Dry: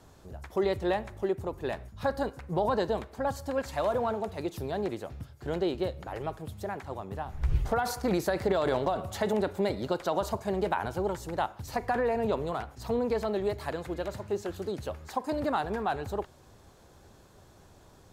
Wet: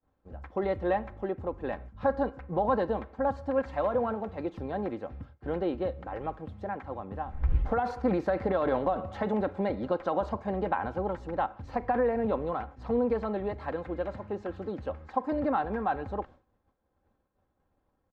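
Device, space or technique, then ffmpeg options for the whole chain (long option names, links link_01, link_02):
hearing-loss simulation: -af "lowpass=1900,agate=range=-33dB:threshold=-43dB:ratio=3:detection=peak,aecho=1:1:3.8:0.46"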